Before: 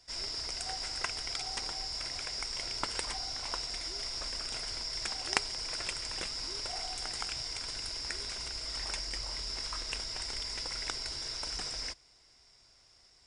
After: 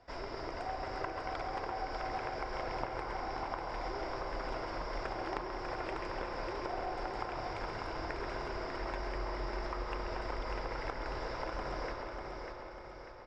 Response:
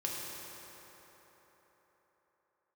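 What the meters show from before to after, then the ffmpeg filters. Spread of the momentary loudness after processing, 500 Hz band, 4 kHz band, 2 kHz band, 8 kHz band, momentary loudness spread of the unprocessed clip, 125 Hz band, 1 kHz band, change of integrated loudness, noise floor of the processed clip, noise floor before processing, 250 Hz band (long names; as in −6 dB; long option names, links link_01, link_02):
3 LU, +10.0 dB, −16.5 dB, −1.0 dB, −23.0 dB, 2 LU, +4.5 dB, +7.0 dB, −4.5 dB, −47 dBFS, −63 dBFS, +8.5 dB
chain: -filter_complex "[0:a]lowpass=1000,lowshelf=frequency=260:gain=-9,bandreject=frequency=60:width_type=h:width=6,bandreject=frequency=120:width_type=h:width=6,bandreject=frequency=180:width_type=h:width=6,bandreject=frequency=240:width_type=h:width=6,bandreject=frequency=300:width_type=h:width=6,bandreject=frequency=360:width_type=h:width=6,acompressor=threshold=-52dB:ratio=6,aecho=1:1:595|1190|1785|2380|2975|3570:0.531|0.26|0.127|0.0625|0.0306|0.015,asplit=2[link_01][link_02];[1:a]atrim=start_sample=2205,lowpass=2900,adelay=134[link_03];[link_02][link_03]afir=irnorm=-1:irlink=0,volume=-5.5dB[link_04];[link_01][link_04]amix=inputs=2:normalize=0,volume=14dB"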